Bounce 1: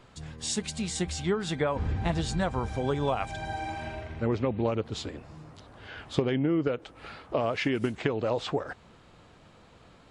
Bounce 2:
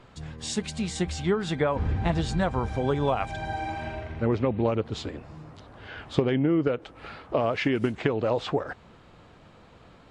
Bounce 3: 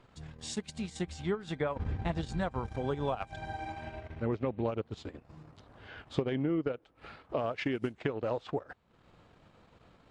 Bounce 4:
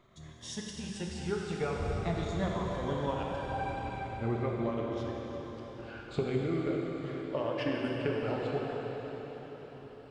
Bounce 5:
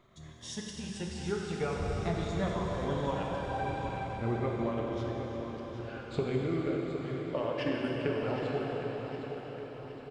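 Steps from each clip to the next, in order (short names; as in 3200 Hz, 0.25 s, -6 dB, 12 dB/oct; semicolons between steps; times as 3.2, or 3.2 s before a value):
high shelf 5400 Hz -9 dB; gain +3 dB
transient shaper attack 0 dB, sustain -12 dB; gain -7.5 dB
moving spectral ripple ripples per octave 1.2, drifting -0.45 Hz, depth 10 dB; reverb RT60 5.1 s, pre-delay 4 ms, DRR -2.5 dB; gain -4 dB
feedback echo 0.763 s, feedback 50%, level -10 dB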